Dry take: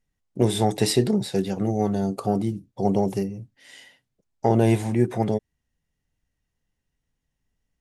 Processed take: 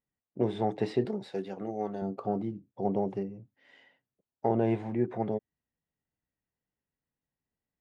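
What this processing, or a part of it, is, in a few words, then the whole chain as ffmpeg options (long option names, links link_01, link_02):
phone in a pocket: -filter_complex "[0:a]asettb=1/sr,asplit=3[link_01][link_02][link_03];[link_01]atrim=end=1.054[link_04];[link_02]atrim=start=1.05:end=2.02,asetpts=PTS-STARTPTS,afade=type=in:duration=0.004:curve=qsin,afade=type=out:start_time=0.966:duration=0.004:curve=qsin,aemphasis=mode=production:type=bsi[link_05];[link_03]atrim=start=2.016[link_06];[link_04][link_05]acrossfade=duration=0.004:curve1=hsin:curve2=qsin[link_07];[link_07][link_06]acrossfade=duration=0.004:curve1=qsin:curve2=hsin,highpass=frequency=240:poles=1,lowpass=3100,highshelf=frequency=2400:gain=-12,volume=-5dB"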